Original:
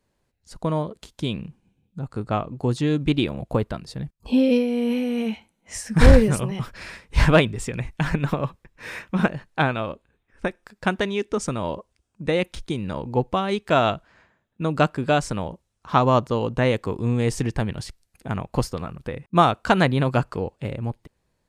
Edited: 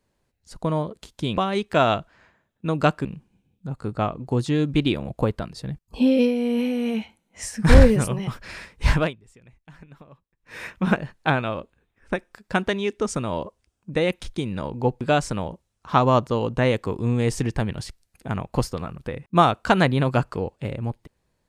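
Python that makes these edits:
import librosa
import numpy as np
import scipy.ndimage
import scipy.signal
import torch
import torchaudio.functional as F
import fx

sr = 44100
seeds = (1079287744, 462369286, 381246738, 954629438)

y = fx.edit(x, sr, fx.fade_down_up(start_s=7.17, length_s=1.81, db=-23.5, fade_s=0.3),
    fx.move(start_s=13.33, length_s=1.68, to_s=1.37), tone=tone)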